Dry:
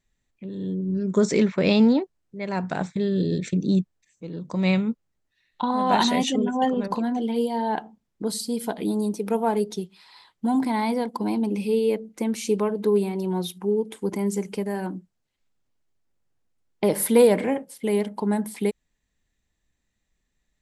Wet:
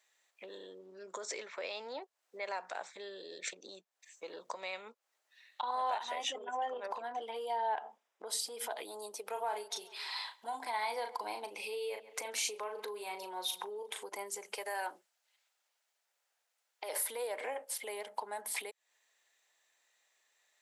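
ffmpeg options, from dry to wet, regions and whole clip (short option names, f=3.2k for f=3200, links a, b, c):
-filter_complex "[0:a]asettb=1/sr,asplit=3[a][b][c];[a]atrim=end=5.984[d];[b]atrim=start=5.98:end=8.71,asetpts=PTS-STARTPTS,afade=t=in:d=0.004:c=qsin,afade=t=out:st=2.726:d=0.004:c=qsin,highshelf=f=5.8k:g=-10,bandreject=f=4.3k:w=6.5,acompressor=threshold=-29dB:ratio=5:attack=3.2:release=140:knee=1:detection=peak[e];[c]atrim=start=8.706[f];[d][e]acrossfade=d=0.004:c1=hsin:c2=qsin[g];[g][f]acrossfade=d=0.004:c1=qsin:c2=hsin,asettb=1/sr,asplit=3[h][i][j];[h]atrim=end=9.294[k];[i]atrim=start=9.29:end=14.04,asetpts=PTS-STARTPTS,afade=t=in:d=0.004:c=qsin,afade=t=out:st=4.746:d=0.004:c=qsin,equalizer=f=2.6k:t=o:w=2.5:g=3,asplit=2[l][m];[m]adelay=38,volume=-7.5dB[n];[l][n]amix=inputs=2:normalize=0,atrim=end_sample=209475,asplit=2[o][p];[p]adelay=136,lowpass=f=3.1k:p=1,volume=-23dB,asplit=2[q][r];[r]adelay=136,lowpass=f=3.1k:p=1,volume=0.38,asplit=2[s][t];[t]adelay=136,lowpass=f=3.1k:p=1,volume=0.38[u];[o][q][s][u]amix=inputs=4:normalize=0,atrim=end_sample=209475[v];[j]atrim=start=14.036[w];[k][v]acrossfade=d=0.004:c1=hsin:c2=qsin[x];[x][w]acrossfade=d=0.004:c1=qsin:c2=hsin,asettb=1/sr,asplit=3[y][z][aa];[y]atrim=end=14.564[ab];[z]atrim=start=14.56:end=16.93,asetpts=PTS-STARTPTS,afade=t=in:d=0.004:c=qsin,afade=t=out:st=2.366:d=0.004:c=qsin,highpass=f=780:p=1,bandreject=f=1.1k:w=13[ac];[aa]atrim=start=16.926[ad];[ab][ac]acrossfade=d=0.004:c1=hsin:c2=qsin[ae];[ae][ad]acrossfade=d=0.004:c1=qsin:c2=hsin,acompressor=threshold=-33dB:ratio=6,alimiter=level_in=7dB:limit=-24dB:level=0:latency=1:release=165,volume=-7dB,highpass=f=570:w=0.5412,highpass=f=570:w=1.3066,volume=7.5dB"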